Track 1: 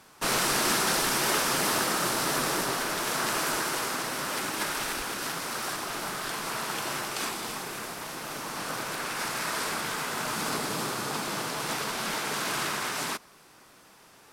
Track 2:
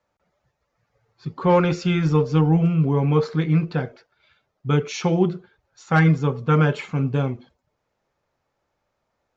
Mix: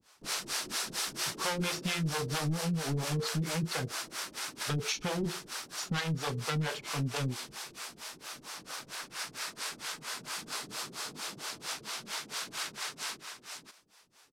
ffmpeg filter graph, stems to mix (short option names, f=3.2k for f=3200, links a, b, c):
-filter_complex "[0:a]volume=-10.5dB,asplit=2[a][b];[b]volume=-6dB[c];[1:a]asoftclip=type=hard:threshold=-20.5dB,volume=-0.5dB[d];[c]aecho=0:1:539:1[e];[a][d][e]amix=inputs=3:normalize=0,equalizer=f=5k:w=0.44:g=10,acrossover=split=400[f][g];[f]aeval=exprs='val(0)*(1-1/2+1/2*cos(2*PI*4.4*n/s))':c=same[h];[g]aeval=exprs='val(0)*(1-1/2-1/2*cos(2*PI*4.4*n/s))':c=same[i];[h][i]amix=inputs=2:normalize=0,acompressor=threshold=-30dB:ratio=4"